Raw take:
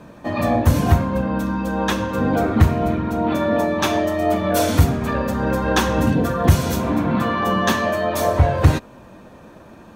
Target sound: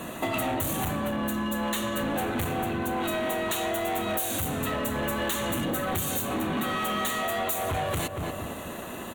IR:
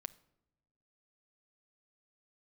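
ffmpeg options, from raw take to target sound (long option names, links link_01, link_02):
-filter_complex "[0:a]lowshelf=frequency=150:gain=-5.5,asetrate=48000,aresample=44100,highshelf=frequency=3300:gain=11,asoftclip=type=hard:threshold=-20dB,aexciter=amount=1:drive=3.4:freq=2700,asplit=2[link_01][link_02];[link_02]adelay=234,lowpass=frequency=1400:poles=1,volume=-10dB,asplit=2[link_03][link_04];[link_04]adelay=234,lowpass=frequency=1400:poles=1,volume=0.36,asplit=2[link_05][link_06];[link_06]adelay=234,lowpass=frequency=1400:poles=1,volume=0.36,asplit=2[link_07][link_08];[link_08]adelay=234,lowpass=frequency=1400:poles=1,volume=0.36[link_09];[link_03][link_05][link_07][link_09]amix=inputs=4:normalize=0[link_10];[link_01][link_10]amix=inputs=2:normalize=0,acompressor=threshold=-32dB:ratio=12,volume=5.5dB"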